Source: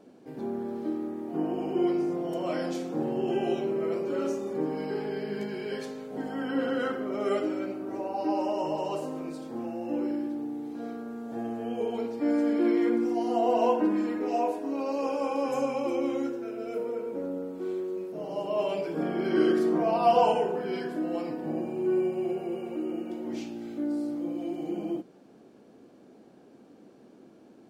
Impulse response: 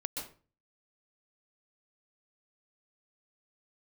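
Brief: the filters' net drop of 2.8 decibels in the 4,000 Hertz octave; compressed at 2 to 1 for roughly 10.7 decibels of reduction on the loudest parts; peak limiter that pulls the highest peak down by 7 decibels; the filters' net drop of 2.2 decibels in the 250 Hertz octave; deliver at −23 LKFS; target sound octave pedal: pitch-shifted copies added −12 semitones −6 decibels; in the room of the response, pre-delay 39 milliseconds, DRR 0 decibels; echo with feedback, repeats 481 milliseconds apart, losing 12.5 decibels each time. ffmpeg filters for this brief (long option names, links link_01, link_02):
-filter_complex "[0:a]equalizer=frequency=250:width_type=o:gain=-3,equalizer=frequency=4000:width_type=o:gain=-4.5,acompressor=threshold=-37dB:ratio=2,alimiter=level_in=4.5dB:limit=-24dB:level=0:latency=1,volume=-4.5dB,aecho=1:1:481|962|1443:0.237|0.0569|0.0137,asplit=2[link_01][link_02];[1:a]atrim=start_sample=2205,adelay=39[link_03];[link_02][link_03]afir=irnorm=-1:irlink=0,volume=-1.5dB[link_04];[link_01][link_04]amix=inputs=2:normalize=0,asplit=2[link_05][link_06];[link_06]asetrate=22050,aresample=44100,atempo=2,volume=-6dB[link_07];[link_05][link_07]amix=inputs=2:normalize=0,volume=10.5dB"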